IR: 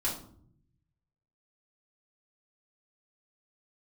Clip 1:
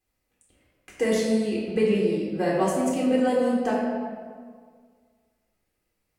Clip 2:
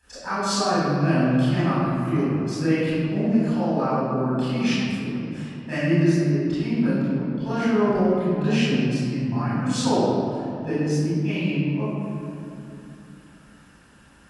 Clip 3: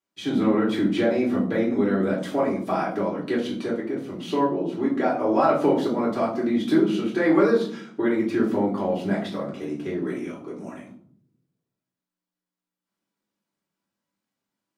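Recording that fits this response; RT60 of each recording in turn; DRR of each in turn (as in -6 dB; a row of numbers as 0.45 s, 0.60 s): 3; 1.8 s, 2.8 s, 0.60 s; -6.5 dB, -12.5 dB, -5.5 dB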